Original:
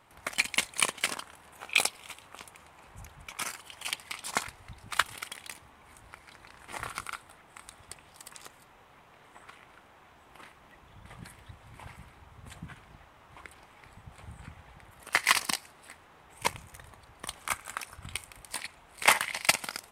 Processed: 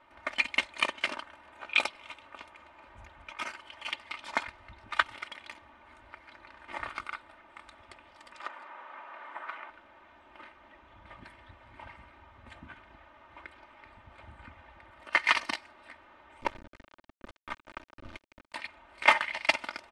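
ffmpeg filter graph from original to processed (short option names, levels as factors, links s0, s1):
-filter_complex "[0:a]asettb=1/sr,asplit=3[s0][s1][s2];[s0]atrim=end=8.404[s3];[s1]atrim=start=8.4:end=9.7,asetpts=PTS-STARTPTS,afade=t=in:d=0.004:c=qsin,afade=t=out:st=1.296:d=0.004:c=qsin,highpass=240,equalizer=f=1200:w=0.54:g=12.5[s4];[s2]atrim=start=9.696[s5];[s3][s4]acrossfade=d=0.004:c1=hsin:c2=qsin[s6];[s6][s5]acrossfade=d=0.004:c1=qsin:c2=hsin,asettb=1/sr,asplit=3[s7][s8][s9];[s7]atrim=end=16.414[s10];[s8]atrim=start=16.41:end=18.54,asetpts=PTS-STARTPTS,afade=t=in:d=0.004:c=qsin,afade=t=out:st=2.126:d=0.004:c=qsin,tiltshelf=f=900:g=8.5,acrusher=bits=4:dc=4:mix=0:aa=0.000001,acrossover=split=530[s11][s12];[s11]aeval=exprs='val(0)*(1-0.5/2+0.5/2*cos(2*PI*4.9*n/s))':c=same[s13];[s12]aeval=exprs='val(0)*(1-0.5/2-0.5/2*cos(2*PI*4.9*n/s))':c=same[s14];[s13][s14]amix=inputs=2:normalize=0[s15];[s9]atrim=start=18.536[s16];[s10][s15]acrossfade=d=0.004:c1=hsin:c2=qsin[s17];[s17][s16]acrossfade=d=0.004:c1=qsin:c2=hsin,lowpass=2900,lowshelf=f=260:g=-7,aecho=1:1:3.3:0.72"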